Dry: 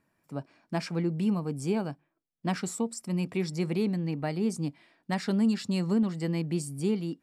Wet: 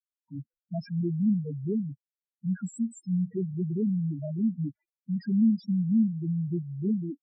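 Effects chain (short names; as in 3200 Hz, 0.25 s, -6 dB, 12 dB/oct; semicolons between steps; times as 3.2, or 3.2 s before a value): sample gate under -52 dBFS; loudest bins only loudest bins 2; gain +3.5 dB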